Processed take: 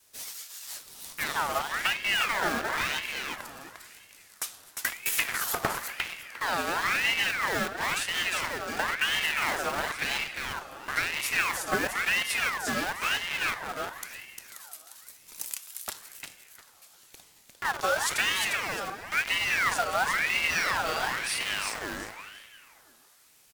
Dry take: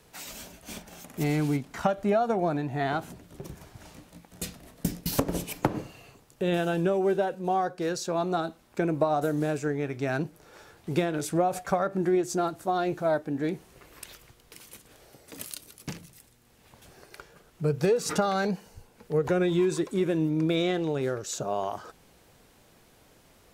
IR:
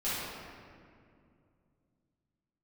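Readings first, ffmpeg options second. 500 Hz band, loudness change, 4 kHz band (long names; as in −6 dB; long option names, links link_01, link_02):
−10.0 dB, 0.0 dB, +10.5 dB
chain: -filter_complex "[0:a]highshelf=frequency=4000:gain=9,bandreject=frequency=147:width_type=h:width=4,bandreject=frequency=294:width_type=h:width=4,bandreject=frequency=441:width_type=h:width=4,adynamicequalizer=threshold=0.00891:dfrequency=980:dqfactor=1:tfrequency=980:tqfactor=1:attack=5:release=100:ratio=0.375:range=2:mode=cutabove:tftype=bell,acrossover=split=1800[link_01][link_02];[link_01]acrusher=bits=4:mix=0:aa=0.000001[link_03];[link_03][link_02]amix=inputs=2:normalize=0,aecho=1:1:352|704|1056:0.631|0.139|0.0305,asplit=2[link_04][link_05];[1:a]atrim=start_sample=2205,adelay=13[link_06];[link_05][link_06]afir=irnorm=-1:irlink=0,volume=-17dB[link_07];[link_04][link_07]amix=inputs=2:normalize=0,aeval=exprs='val(0)*sin(2*PI*1700*n/s+1700*0.45/0.98*sin(2*PI*0.98*n/s))':channel_layout=same,volume=-1dB"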